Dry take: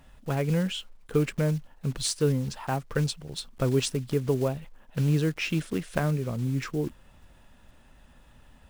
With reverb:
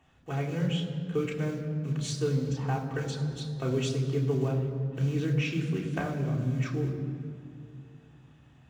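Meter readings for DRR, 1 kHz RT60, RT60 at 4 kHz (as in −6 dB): −2.5 dB, 2.3 s, 1.5 s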